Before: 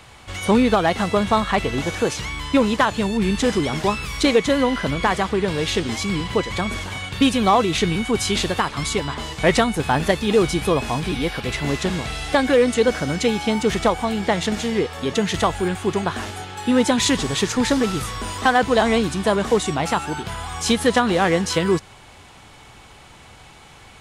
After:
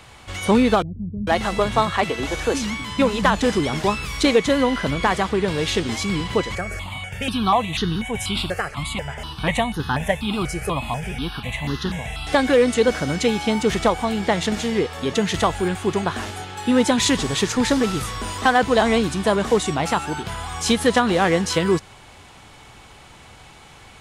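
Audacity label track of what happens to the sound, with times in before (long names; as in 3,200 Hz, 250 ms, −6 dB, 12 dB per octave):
0.820000	3.410000	multiband delay without the direct sound lows, highs 450 ms, split 220 Hz
6.550000	12.270000	step-sequenced phaser 4.1 Hz 980–2,300 Hz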